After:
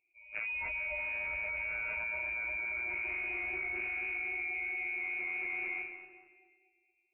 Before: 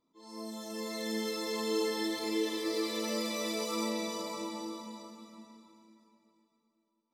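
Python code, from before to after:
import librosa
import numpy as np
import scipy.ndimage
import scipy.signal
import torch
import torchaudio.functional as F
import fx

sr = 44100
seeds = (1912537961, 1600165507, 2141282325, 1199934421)

y = fx.noise_reduce_blind(x, sr, reduce_db=19)
y = scipy.signal.sosfilt(scipy.signal.ellip(3, 1.0, 40, [500.0, 1800.0], 'bandstop', fs=sr, output='sos'), y)
y = fx.peak_eq(y, sr, hz=610.0, db=14.0, octaves=0.33)
y = fx.leveller(y, sr, passes=3)
y = fx.comb_fb(y, sr, f0_hz=150.0, decay_s=1.8, harmonics='all', damping=0.0, mix_pct=70)
y = fx.echo_feedback(y, sr, ms=227, feedback_pct=36, wet_db=-4)
y = fx.freq_invert(y, sr, carrier_hz=2700)
y = fx.env_flatten(y, sr, amount_pct=100)
y = y * librosa.db_to_amplitude(-5.5)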